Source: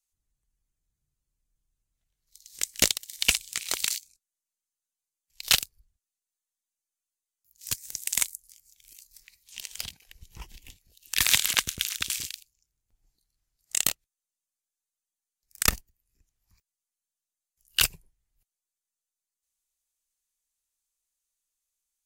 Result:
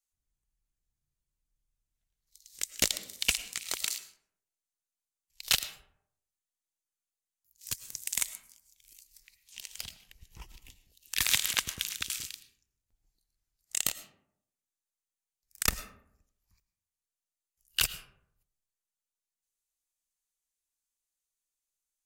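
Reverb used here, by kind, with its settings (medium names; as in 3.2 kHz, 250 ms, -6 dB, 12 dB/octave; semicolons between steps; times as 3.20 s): algorithmic reverb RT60 0.72 s, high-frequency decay 0.45×, pre-delay 65 ms, DRR 14 dB; trim -5 dB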